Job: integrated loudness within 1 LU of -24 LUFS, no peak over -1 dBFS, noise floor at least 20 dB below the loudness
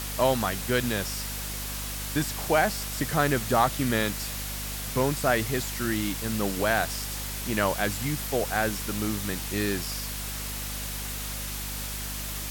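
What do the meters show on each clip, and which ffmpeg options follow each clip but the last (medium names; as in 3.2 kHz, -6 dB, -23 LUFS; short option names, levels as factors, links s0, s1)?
hum 50 Hz; highest harmonic 250 Hz; hum level -35 dBFS; noise floor -34 dBFS; noise floor target -48 dBFS; loudness -28.0 LUFS; peak level -9.0 dBFS; loudness target -24.0 LUFS
-> -af "bandreject=f=50:t=h:w=4,bandreject=f=100:t=h:w=4,bandreject=f=150:t=h:w=4,bandreject=f=200:t=h:w=4,bandreject=f=250:t=h:w=4"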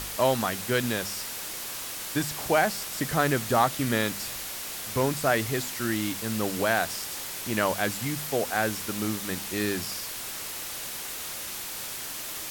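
hum not found; noise floor -36 dBFS; noise floor target -48 dBFS
-> -af "afftdn=nr=12:nf=-36"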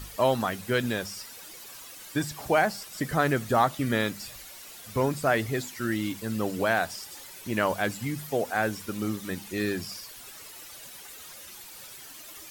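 noise floor -46 dBFS; noise floor target -49 dBFS
-> -af "afftdn=nr=6:nf=-46"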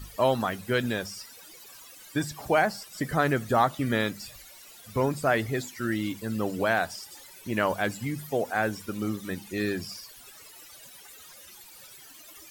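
noise floor -50 dBFS; loudness -28.5 LUFS; peak level -9.5 dBFS; loudness target -24.0 LUFS
-> -af "volume=1.68"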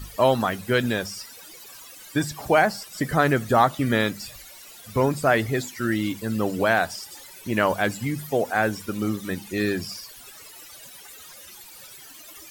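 loudness -24.0 LUFS; peak level -5.0 dBFS; noise floor -45 dBFS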